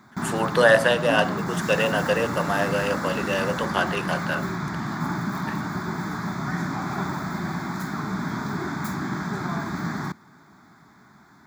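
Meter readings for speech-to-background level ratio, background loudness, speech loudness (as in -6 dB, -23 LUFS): 5.0 dB, -28.5 LUFS, -23.5 LUFS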